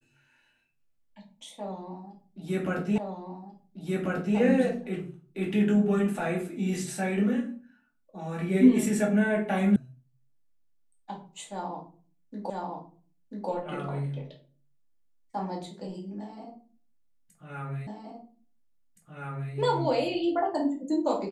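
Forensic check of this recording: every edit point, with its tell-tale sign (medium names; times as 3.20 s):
2.98 s: repeat of the last 1.39 s
9.76 s: sound stops dead
12.50 s: repeat of the last 0.99 s
17.87 s: repeat of the last 1.67 s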